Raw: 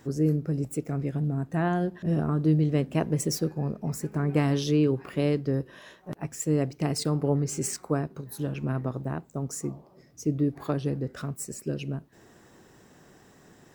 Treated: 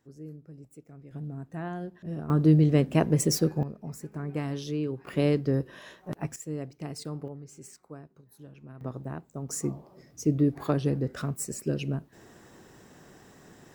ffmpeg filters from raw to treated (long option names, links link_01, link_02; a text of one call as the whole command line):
ffmpeg -i in.wav -af "asetnsamples=nb_out_samples=441:pad=0,asendcmd='1.11 volume volume -9.5dB;2.3 volume volume 3dB;3.63 volume volume -8dB;5.07 volume volume 1dB;6.36 volume volume -10dB;7.28 volume volume -17.5dB;8.81 volume volume -5dB;9.49 volume volume 2dB',volume=-19dB" out.wav